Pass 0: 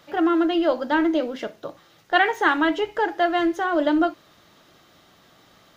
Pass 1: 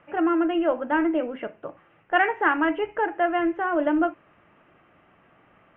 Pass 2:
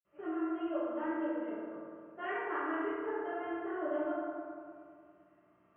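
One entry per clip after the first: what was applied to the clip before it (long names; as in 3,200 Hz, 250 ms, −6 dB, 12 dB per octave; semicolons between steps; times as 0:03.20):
elliptic low-pass filter 2,700 Hz, stop band 40 dB; level −1.5 dB
convolution reverb RT60 2.2 s, pre-delay 46 ms; level +7 dB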